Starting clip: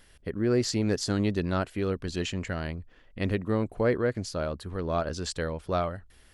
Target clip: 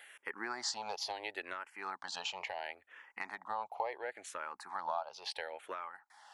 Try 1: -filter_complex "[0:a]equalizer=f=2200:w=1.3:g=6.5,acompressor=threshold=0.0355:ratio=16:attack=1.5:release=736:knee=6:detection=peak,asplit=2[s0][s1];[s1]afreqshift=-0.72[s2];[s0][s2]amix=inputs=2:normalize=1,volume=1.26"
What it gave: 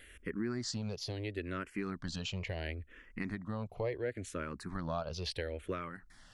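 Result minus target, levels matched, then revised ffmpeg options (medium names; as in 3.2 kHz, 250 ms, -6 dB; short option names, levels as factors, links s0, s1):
1 kHz band -8.0 dB
-filter_complex "[0:a]highpass=f=840:t=q:w=8.6,equalizer=f=2200:w=1.3:g=6.5,acompressor=threshold=0.0355:ratio=16:attack=1.5:release=736:knee=6:detection=peak,asplit=2[s0][s1];[s1]afreqshift=-0.72[s2];[s0][s2]amix=inputs=2:normalize=1,volume=1.26"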